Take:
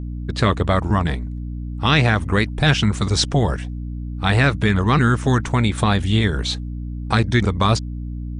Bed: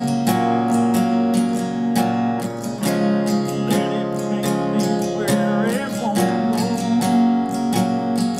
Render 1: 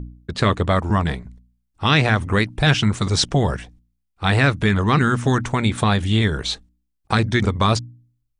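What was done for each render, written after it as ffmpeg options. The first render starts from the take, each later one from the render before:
-af "bandreject=f=60:t=h:w=4,bandreject=f=120:t=h:w=4,bandreject=f=180:t=h:w=4,bandreject=f=240:t=h:w=4,bandreject=f=300:t=h:w=4"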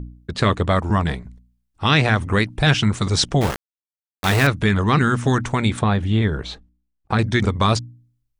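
-filter_complex "[0:a]asettb=1/sr,asplit=3[s0][s1][s2];[s0]atrim=end=3.414[s3];[s1]atrim=start=3.41:end=4.47,asetpts=PTS-STARTPTS,afade=t=in:d=0.004:c=qsin,afade=t=out:st=1.056:d=0.004:c=qsin,aeval=exprs='val(0)*gte(abs(val(0)),0.106)':c=same[s4];[s2]atrim=start=4.466[s5];[s3][s4]acrossfade=d=0.004:c1=hsin:c2=qsin[s6];[s6][s5]acrossfade=d=0.004:c1=qsin:c2=hsin,asettb=1/sr,asplit=3[s7][s8][s9];[s7]atrim=end=5.794[s10];[s8]atrim=start=5.79:end=7.19,asetpts=PTS-STARTPTS,afade=t=in:d=0.004:c=qsin,afade=t=out:st=1.396:d=0.004:c=qsin,lowpass=f=1500:p=1[s11];[s9]atrim=start=7.186[s12];[s10][s11]acrossfade=d=0.004:c1=hsin:c2=qsin[s13];[s13][s12]acrossfade=d=0.004:c1=qsin:c2=hsin"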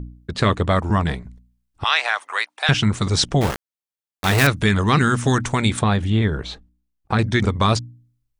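-filter_complex "[0:a]asettb=1/sr,asplit=3[s0][s1][s2];[s0]atrim=end=1.844[s3];[s1]atrim=start=1.84:end=2.69,asetpts=PTS-STARTPTS,afade=t=in:d=0.004:c=qsin,afade=t=out:st=0.846:d=0.004:c=qsin,highpass=f=730:w=0.5412,highpass=f=730:w=1.3066[s4];[s2]atrim=start=2.686[s5];[s3][s4]acrossfade=d=0.004:c1=hsin:c2=qsin[s6];[s6][s5]acrossfade=d=0.004:c1=qsin:c2=hsin,asettb=1/sr,asplit=3[s7][s8][s9];[s7]atrim=end=4.384[s10];[s8]atrim=start=4.38:end=6.1,asetpts=PTS-STARTPTS,afade=t=in:d=0.004:c=qsin,afade=t=out:st=1.716:d=0.004:c=qsin,highshelf=f=4200:g=8[s11];[s9]atrim=start=6.096[s12];[s10][s11]acrossfade=d=0.004:c1=hsin:c2=qsin[s13];[s13][s12]acrossfade=d=0.004:c1=qsin:c2=hsin"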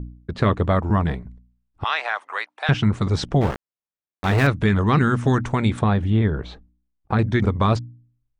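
-af "lowpass=f=1300:p=1"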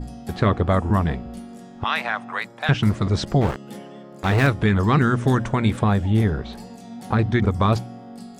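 -filter_complex "[1:a]volume=0.112[s0];[0:a][s0]amix=inputs=2:normalize=0"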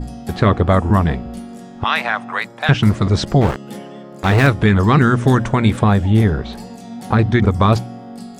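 -af "volume=1.88,alimiter=limit=0.794:level=0:latency=1"

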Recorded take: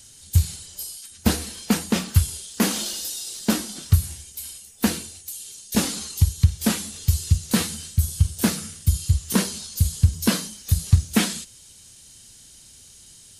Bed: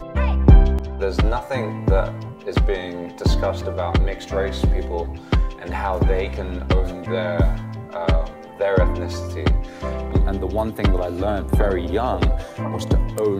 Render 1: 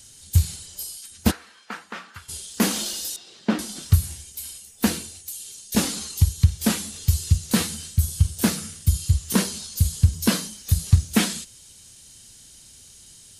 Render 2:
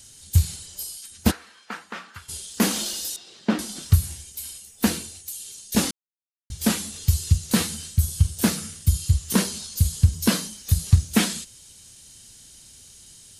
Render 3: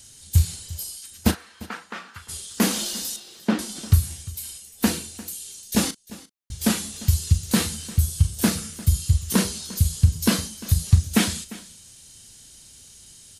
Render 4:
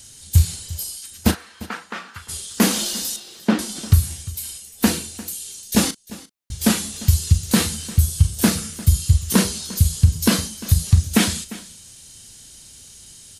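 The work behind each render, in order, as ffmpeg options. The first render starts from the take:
-filter_complex "[0:a]asplit=3[s0][s1][s2];[s0]afade=t=out:st=1.3:d=0.02[s3];[s1]bandpass=f=1400:t=q:w=2,afade=t=in:st=1.3:d=0.02,afade=t=out:st=2.28:d=0.02[s4];[s2]afade=t=in:st=2.28:d=0.02[s5];[s3][s4][s5]amix=inputs=3:normalize=0,asettb=1/sr,asplit=3[s6][s7][s8];[s6]atrim=end=3.164[s9];[s7]atrim=start=3.16:end=3.59,asetpts=PTS-STARTPTS,afade=t=in:d=0.004:c=qsin,afade=t=out:st=0.426:d=0.004:c=qsin,highpass=130,lowpass=2600[s10];[s8]atrim=start=3.586[s11];[s9][s10]acrossfade=d=0.004:c1=hsin:c2=qsin[s12];[s12][s11]acrossfade=d=0.004:c1=qsin:c2=hsin"
-filter_complex "[0:a]asplit=3[s0][s1][s2];[s0]atrim=end=5.91,asetpts=PTS-STARTPTS,afade=t=out:st=5.906:d=0.004:c=hsin[s3];[s1]atrim=start=5.91:end=6.5,asetpts=PTS-STARTPTS,volume=0[s4];[s2]atrim=start=6.5,asetpts=PTS-STARTPTS,afade=t=in:d=0.004:c=hsin[s5];[s3][s4][s5]concat=n=3:v=0:a=1"
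-filter_complex "[0:a]asplit=2[s0][s1];[s1]adelay=37,volume=0.224[s2];[s0][s2]amix=inputs=2:normalize=0,aecho=1:1:349:0.112"
-af "volume=1.58,alimiter=limit=0.708:level=0:latency=1"

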